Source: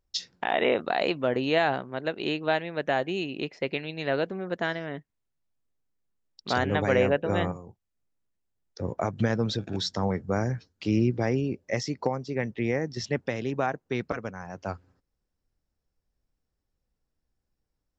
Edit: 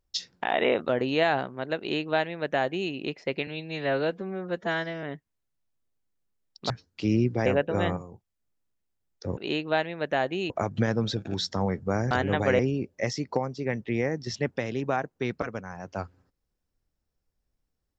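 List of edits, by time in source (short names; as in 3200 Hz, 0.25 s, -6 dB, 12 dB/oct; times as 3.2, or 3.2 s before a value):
0.89–1.24 cut
2.13–3.26 copy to 8.92
3.82–4.86 stretch 1.5×
6.53–7.01 swap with 10.53–11.29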